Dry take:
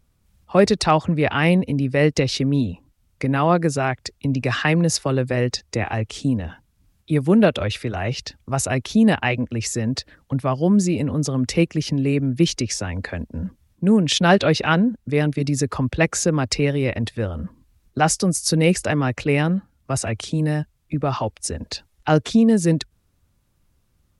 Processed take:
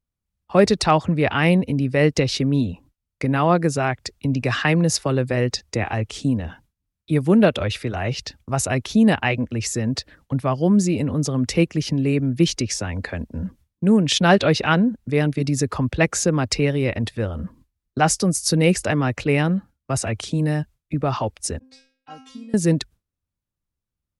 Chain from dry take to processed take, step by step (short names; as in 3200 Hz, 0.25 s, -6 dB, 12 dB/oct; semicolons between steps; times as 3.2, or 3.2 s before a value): gate with hold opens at -42 dBFS; 21.59–22.54 metallic resonator 260 Hz, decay 0.55 s, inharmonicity 0.002